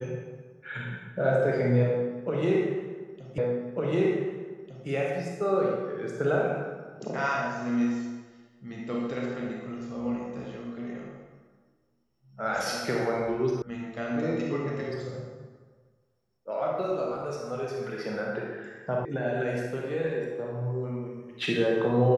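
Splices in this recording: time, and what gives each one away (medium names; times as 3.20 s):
3.38 s: repeat of the last 1.5 s
13.62 s: sound stops dead
19.05 s: sound stops dead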